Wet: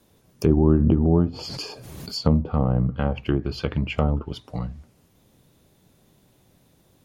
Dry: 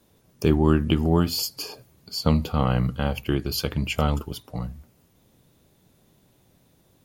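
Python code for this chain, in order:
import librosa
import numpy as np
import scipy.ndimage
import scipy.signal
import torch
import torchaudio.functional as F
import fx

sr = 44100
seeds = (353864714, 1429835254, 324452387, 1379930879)

y = fx.env_lowpass_down(x, sr, base_hz=670.0, full_db=-18.0)
y = fx.pre_swell(y, sr, db_per_s=25.0, at=(0.57, 2.14))
y = F.gain(torch.from_numpy(y), 1.5).numpy()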